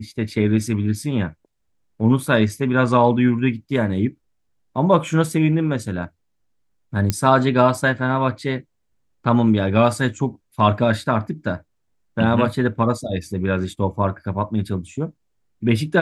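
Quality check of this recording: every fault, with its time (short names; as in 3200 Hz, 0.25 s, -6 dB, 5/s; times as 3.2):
7.1 pop -5 dBFS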